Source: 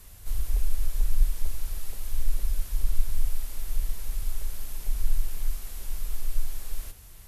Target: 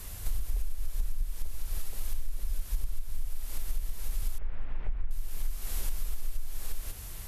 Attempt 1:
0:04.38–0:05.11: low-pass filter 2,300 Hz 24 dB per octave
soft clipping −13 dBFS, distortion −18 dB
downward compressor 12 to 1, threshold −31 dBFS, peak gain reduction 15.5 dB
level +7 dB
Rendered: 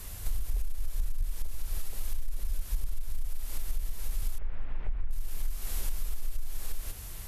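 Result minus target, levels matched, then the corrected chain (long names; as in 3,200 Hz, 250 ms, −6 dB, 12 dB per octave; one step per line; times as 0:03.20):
soft clipping: distortion +17 dB
0:04.38–0:05.11: low-pass filter 2,300 Hz 24 dB per octave
soft clipping −2.5 dBFS, distortion −35 dB
downward compressor 12 to 1, threshold −31 dBFS, peak gain reduction 19.5 dB
level +7 dB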